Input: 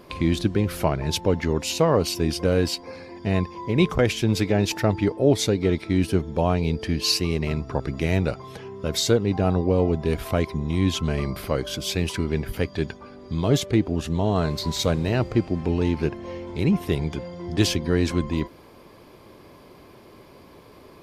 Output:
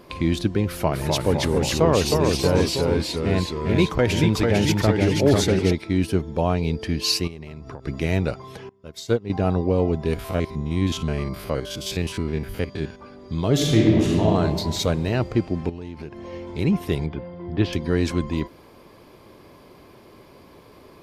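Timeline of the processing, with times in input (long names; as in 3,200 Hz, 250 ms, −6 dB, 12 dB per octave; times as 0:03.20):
0:00.67–0:05.73: delay with pitch and tempo change per echo 246 ms, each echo −1 semitone, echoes 3
0:07.27–0:07.86: downward compressor 16 to 1, threshold −31 dBFS
0:08.69–0:09.30: expander for the loud parts 2.5 to 1, over −30 dBFS
0:10.14–0:13.00: spectrum averaged block by block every 50 ms
0:13.53–0:14.24: thrown reverb, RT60 1.8 s, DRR −4.5 dB
0:15.69–0:16.33: downward compressor 4 to 1, threshold −32 dBFS
0:17.06–0:17.73: high-frequency loss of the air 360 metres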